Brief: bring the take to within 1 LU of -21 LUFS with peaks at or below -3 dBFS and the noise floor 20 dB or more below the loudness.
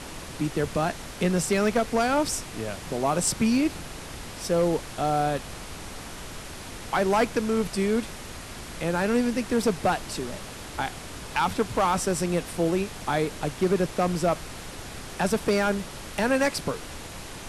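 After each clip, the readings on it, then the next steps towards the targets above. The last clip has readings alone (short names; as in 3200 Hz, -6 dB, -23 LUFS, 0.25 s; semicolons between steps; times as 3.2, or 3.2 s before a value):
clipped 0.7%; flat tops at -15.5 dBFS; noise floor -40 dBFS; noise floor target -47 dBFS; loudness -26.5 LUFS; peak -15.5 dBFS; loudness target -21.0 LUFS
-> clip repair -15.5 dBFS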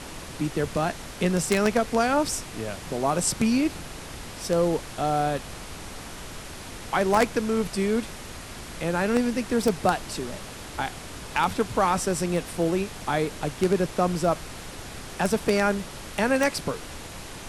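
clipped 0.0%; noise floor -40 dBFS; noise floor target -46 dBFS
-> noise print and reduce 6 dB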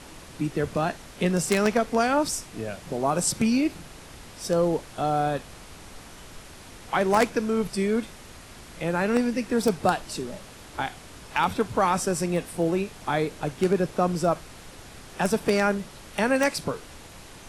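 noise floor -46 dBFS; loudness -26.0 LUFS; peak -6.5 dBFS; loudness target -21.0 LUFS
-> gain +5 dB; limiter -3 dBFS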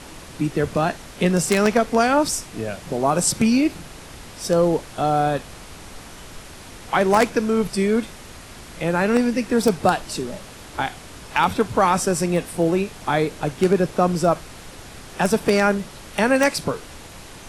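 loudness -21.0 LUFS; peak -3.0 dBFS; noise floor -41 dBFS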